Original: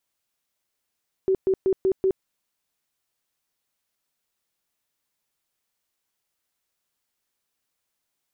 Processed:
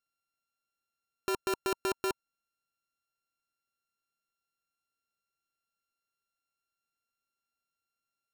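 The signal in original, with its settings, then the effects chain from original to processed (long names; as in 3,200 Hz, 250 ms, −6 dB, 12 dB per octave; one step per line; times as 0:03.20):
tone bursts 381 Hz, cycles 26, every 0.19 s, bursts 5, −17 dBFS
samples sorted by size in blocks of 32 samples
notch filter 940 Hz, Q 11
output level in coarse steps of 15 dB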